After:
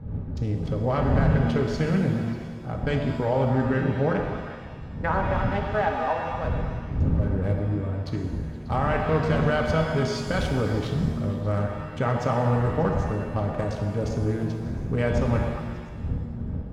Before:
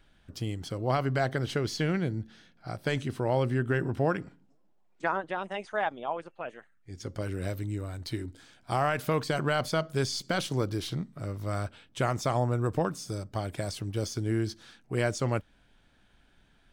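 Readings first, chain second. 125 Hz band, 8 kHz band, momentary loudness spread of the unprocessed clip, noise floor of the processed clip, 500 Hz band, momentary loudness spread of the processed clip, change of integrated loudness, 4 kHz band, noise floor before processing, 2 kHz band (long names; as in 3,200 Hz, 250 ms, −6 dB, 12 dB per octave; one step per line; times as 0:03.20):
+7.5 dB, −6.0 dB, 10 LU, −36 dBFS, +5.0 dB, 9 LU, +5.5 dB, −2.0 dB, −64 dBFS, +3.0 dB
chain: adaptive Wiener filter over 15 samples
wind on the microphone 120 Hz −34 dBFS
low-pass filter 2,300 Hz 6 dB per octave
in parallel at −1 dB: compressor whose output falls as the input rises −30 dBFS
on the sum: notch comb filter 350 Hz
on a send: echo through a band-pass that steps 118 ms, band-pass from 630 Hz, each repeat 0.7 octaves, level −4.5 dB
on the sum: reverb with rising layers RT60 1.5 s, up +7 semitones, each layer −8 dB, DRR 3.5 dB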